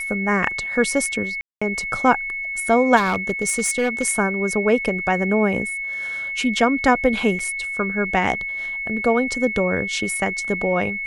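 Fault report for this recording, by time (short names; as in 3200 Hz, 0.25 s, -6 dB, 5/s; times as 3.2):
tone 2200 Hz -25 dBFS
1.41–1.61 gap 0.205 s
2.96–4.07 clipped -15 dBFS
7.39 gap 4.4 ms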